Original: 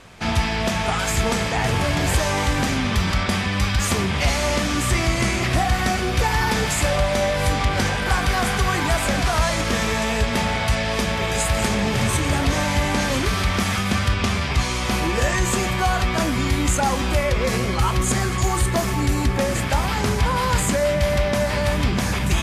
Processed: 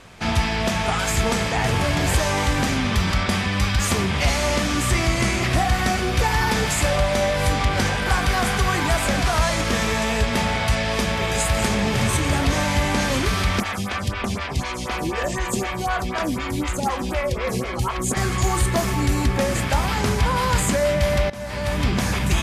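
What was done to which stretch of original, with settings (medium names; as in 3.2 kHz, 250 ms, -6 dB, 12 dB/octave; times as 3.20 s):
13.60–18.17 s: lamp-driven phase shifter 4 Hz
21.30–21.89 s: fade in, from -18.5 dB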